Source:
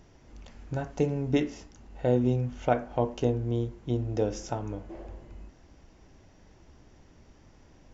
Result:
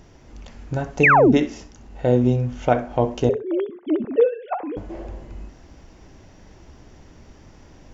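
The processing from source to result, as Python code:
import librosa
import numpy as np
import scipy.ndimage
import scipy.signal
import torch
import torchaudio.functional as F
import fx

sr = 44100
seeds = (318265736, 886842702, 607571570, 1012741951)

p1 = fx.sine_speech(x, sr, at=(3.29, 4.77))
p2 = fx.rider(p1, sr, range_db=3, speed_s=2.0)
p3 = p1 + (p2 * 10.0 ** (2.0 / 20.0))
p4 = fx.spec_paint(p3, sr, seeds[0], shape='fall', start_s=1.03, length_s=0.29, low_hz=210.0, high_hz=2800.0, level_db=-13.0)
y = fx.echo_feedback(p4, sr, ms=65, feedback_pct=21, wet_db=-16)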